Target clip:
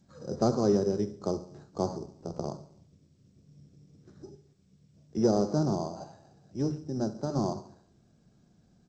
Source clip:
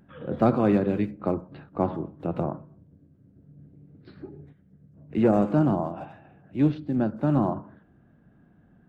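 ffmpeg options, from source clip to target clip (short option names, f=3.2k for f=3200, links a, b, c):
-filter_complex "[0:a]asettb=1/sr,asplit=3[a][b][c];[a]atrim=end=1.984[d];[b]atrim=start=1.98:end=2.47,asetpts=PTS-STARTPTS,afade=t=in:d=0.004:c=qsin,afade=t=out:st=0.486:d=0.004:c=qsin,tremolo=f=65:d=0.824[e];[c]atrim=start=2.466[f];[d][e]acrossfade=d=0.004:c1=hsin:c2=qsin[g];[g][f]acrossfade=d=0.004:c1=qsin:c2=hsin,equalizer=f=280:w=6.4:g=-6.5,asplit=3[h][i][j];[h]afade=t=out:st=4.35:d=0.02[k];[i]acompressor=threshold=-52dB:ratio=8,afade=t=in:st=4.35:d=0.02,afade=t=out:st=5.14:d=0.02[l];[j]afade=t=in:st=5.14:d=0.02[m];[k][l][m]amix=inputs=3:normalize=0,lowpass=1.2k,asettb=1/sr,asplit=3[n][o][p];[n]atrim=end=6.634[q];[o]atrim=start=6.63:end=7.39,asetpts=PTS-STARTPTS,afade=t=in:d=0.004:c=qsin,afade=t=out:st=0.756:d=0.004:c=qsin,bandreject=f=50:t=h:w=6,bandreject=f=100:t=h:w=6,bandreject=f=150:t=h:w=6,bandreject=f=200:t=h:w=6,bandreject=f=250:t=h:w=6,bandreject=f=300:t=h:w=6[r];[p]atrim=start=7.386[s];[q][r]acrossfade=d=0.004:c1=hsin:c2=qsin[t];[t][s]acrossfade=d=0.004:c1=qsin:c2=hsin,aecho=1:1:70|140|210|280|350:0.133|0.0707|0.0375|0.0199|0.0105,acrusher=samples=8:mix=1:aa=0.000001,adynamicequalizer=threshold=0.00631:dfrequency=410:dqfactor=5.9:tfrequency=410:tqfactor=5.9:attack=5:release=100:ratio=0.375:range=4:mode=boostabove:tftype=bell,volume=-5dB" -ar 16000 -c:a g722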